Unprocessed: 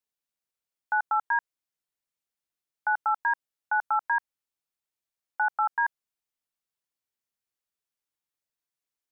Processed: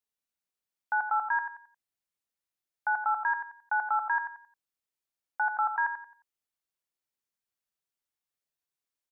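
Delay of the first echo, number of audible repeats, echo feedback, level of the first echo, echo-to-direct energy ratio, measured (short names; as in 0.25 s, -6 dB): 89 ms, 3, 31%, -8.5 dB, -8.0 dB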